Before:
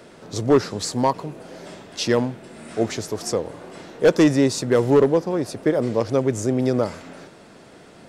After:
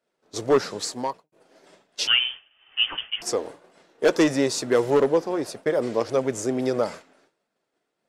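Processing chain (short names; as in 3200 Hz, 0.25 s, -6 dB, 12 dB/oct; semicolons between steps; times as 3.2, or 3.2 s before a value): bell 61 Hz -15 dB 1.9 oct; 2.07–3.22 inverted band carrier 3300 Hz; flange 1.6 Hz, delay 1.2 ms, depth 1.9 ms, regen -64%; 0.75–1.32 fade out; expander -34 dBFS; low shelf 250 Hz -5.5 dB; gain +4 dB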